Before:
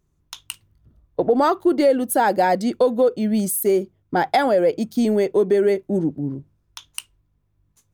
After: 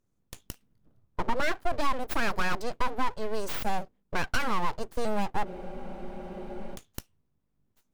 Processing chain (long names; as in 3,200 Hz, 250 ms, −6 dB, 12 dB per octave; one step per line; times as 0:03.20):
harmonic generator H 6 −24 dB, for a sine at −6.5 dBFS
full-wave rectification
frozen spectrum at 0:05.47, 1.27 s
level −7 dB